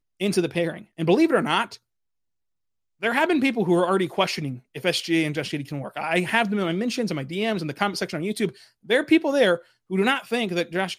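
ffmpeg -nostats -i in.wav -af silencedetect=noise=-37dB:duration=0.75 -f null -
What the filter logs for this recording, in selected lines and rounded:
silence_start: 1.75
silence_end: 3.02 | silence_duration: 1.27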